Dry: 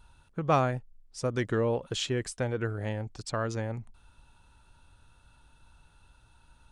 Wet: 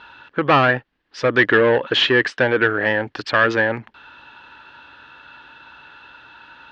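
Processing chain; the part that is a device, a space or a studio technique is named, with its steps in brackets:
overdrive pedal into a guitar cabinet (mid-hump overdrive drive 22 dB, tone 3,000 Hz, clips at −12 dBFS; loudspeaker in its box 92–4,300 Hz, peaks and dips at 97 Hz −9 dB, 170 Hz −7 dB, 300 Hz +4 dB, 700 Hz −4 dB, 1,700 Hz +10 dB, 2,900 Hz +4 dB)
level +6 dB

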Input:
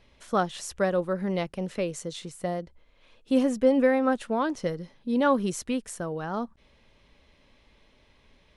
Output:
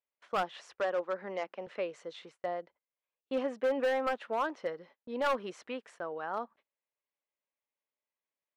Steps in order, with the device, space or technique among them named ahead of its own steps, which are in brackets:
walkie-talkie (band-pass filter 550–2,400 Hz; hard clipping −23.5 dBFS, distortion −11 dB; noise gate −55 dBFS, range −30 dB)
0:00.80–0:01.67: elliptic band-pass filter 200–7,100 Hz
level −1.5 dB

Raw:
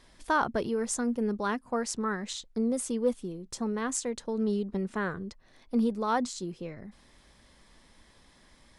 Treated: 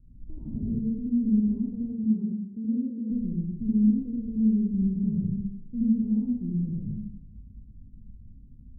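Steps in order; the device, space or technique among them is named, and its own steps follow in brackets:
club heard from the street (brickwall limiter −25 dBFS, peak gain reduction 11 dB; low-pass filter 190 Hz 24 dB per octave; convolution reverb RT60 0.90 s, pre-delay 69 ms, DRR −6.5 dB)
0:01.92–0:03.10: high-pass filter 120 Hz → 310 Hz 12 dB per octave
level +8.5 dB

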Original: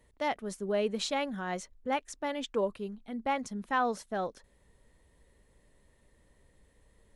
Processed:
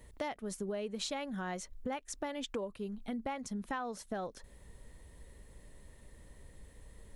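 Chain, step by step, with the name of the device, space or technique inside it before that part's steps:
ASMR close-microphone chain (low-shelf EQ 150 Hz +6 dB; downward compressor 10 to 1, threshold −41 dBFS, peak gain reduction 17 dB; high-shelf EQ 7,000 Hz +5.5 dB)
level +5.5 dB

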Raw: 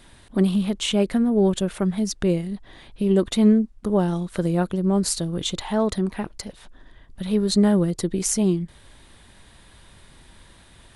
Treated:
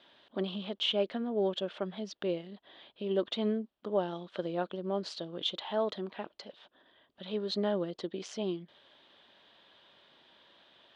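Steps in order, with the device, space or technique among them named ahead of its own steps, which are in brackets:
phone earpiece (loudspeaker in its box 340–4,300 Hz, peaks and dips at 600 Hz +5 dB, 2,100 Hz −4 dB, 3,200 Hz +8 dB)
level −8.5 dB

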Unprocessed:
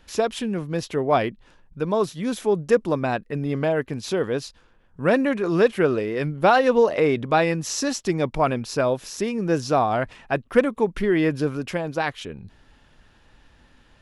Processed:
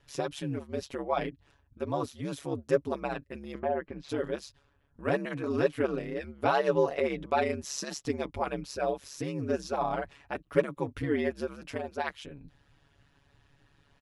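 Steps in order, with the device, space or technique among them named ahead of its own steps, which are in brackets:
0:03.58–0:04.08: low-pass filter 1,400 Hz → 3,100 Hz 12 dB per octave
ring-modulated robot voice (ring modulation 71 Hz; comb filter 7.1 ms, depth 63%)
level −8 dB

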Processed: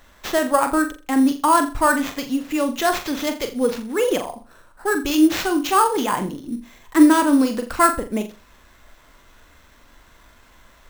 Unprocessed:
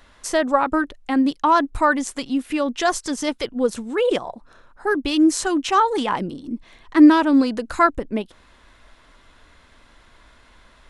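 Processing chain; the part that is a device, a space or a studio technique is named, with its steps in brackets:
flutter between parallel walls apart 7.2 metres, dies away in 0.32 s
early companding sampler (sample-rate reduction 9,600 Hz, jitter 0%; log-companded quantiser 8 bits)

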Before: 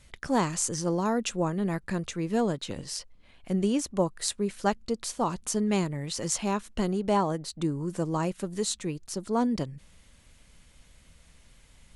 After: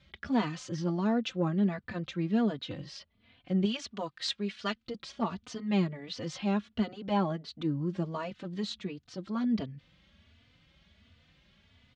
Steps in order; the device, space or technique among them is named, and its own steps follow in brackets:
0:03.65–0:04.87: tilt shelving filter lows −7.5 dB, about 920 Hz
barber-pole flanger into a guitar amplifier (barber-pole flanger 3.3 ms +1.4 Hz; soft clipping −14 dBFS, distortion −26 dB; loudspeaker in its box 81–4,400 Hz, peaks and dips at 85 Hz +7 dB, 210 Hz +4 dB, 460 Hz −4 dB, 930 Hz −5 dB, 3,300 Hz +4 dB)

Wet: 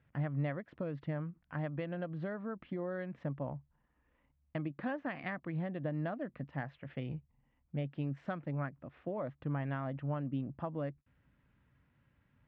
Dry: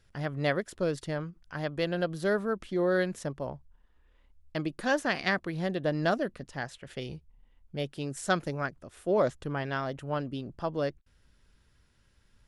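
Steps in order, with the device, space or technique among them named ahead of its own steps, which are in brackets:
bass amplifier (downward compressor 5 to 1, threshold −33 dBFS, peak gain reduction 11.5 dB; loudspeaker in its box 80–2,400 Hz, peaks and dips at 140 Hz +7 dB, 270 Hz +5 dB, 400 Hz −8 dB, 1,500 Hz −4 dB)
level −2 dB

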